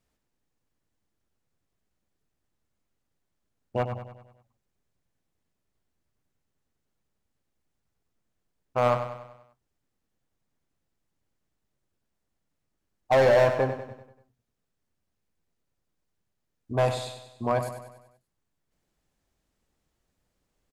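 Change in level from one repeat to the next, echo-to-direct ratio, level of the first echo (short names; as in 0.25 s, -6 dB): -6.0 dB, -8.5 dB, -9.5 dB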